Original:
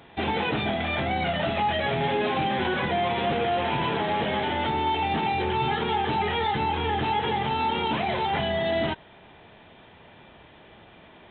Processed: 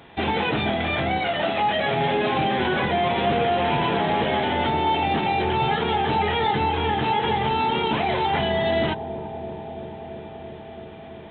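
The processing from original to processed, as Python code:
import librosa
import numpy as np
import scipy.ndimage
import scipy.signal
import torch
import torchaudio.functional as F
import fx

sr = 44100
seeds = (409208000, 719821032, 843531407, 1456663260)

y = fx.highpass(x, sr, hz=fx.line((1.18, 380.0), (2.02, 120.0)), slope=12, at=(1.18, 2.02), fade=0.02)
y = fx.echo_bbd(y, sr, ms=335, stages=2048, feedback_pct=84, wet_db=-12.5)
y = y * librosa.db_to_amplitude(3.0)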